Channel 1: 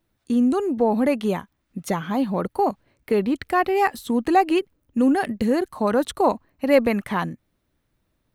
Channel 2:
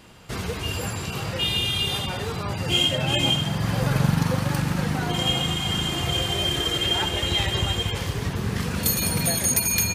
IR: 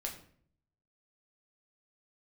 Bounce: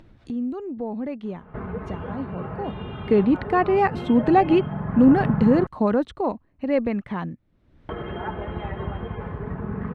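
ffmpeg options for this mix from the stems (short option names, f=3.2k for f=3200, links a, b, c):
-filter_complex "[0:a]lowpass=3.4k,lowshelf=f=400:g=9,volume=-2.5dB,afade=t=in:st=2.66:d=0.33:silence=0.237137,afade=t=out:st=5.78:d=0.36:silence=0.473151[a];[1:a]lowpass=f=1.5k:w=0.5412,lowpass=f=1.5k:w=1.3066,aecho=1:1:4.7:0.43,adelay=1250,volume=-3dB,asplit=3[b][c][d];[b]atrim=end=5.67,asetpts=PTS-STARTPTS,afade=t=out:st=5.666:d=0.004:c=hsin[e];[c]atrim=start=5.67:end=7.89,asetpts=PTS-STARTPTS,volume=0[f];[d]atrim=start=7.89,asetpts=PTS-STARTPTS,afade=t=in:d=0.004:c=hsin[g];[e][f][g]concat=n=3:v=0:a=1[h];[a][h]amix=inputs=2:normalize=0,acompressor=mode=upward:threshold=-28dB:ratio=2.5"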